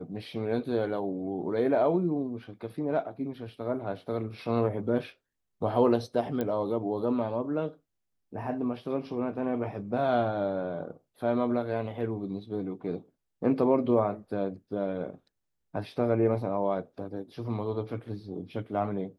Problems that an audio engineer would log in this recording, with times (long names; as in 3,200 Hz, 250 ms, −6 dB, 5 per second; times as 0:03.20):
0:06.41: click −18 dBFS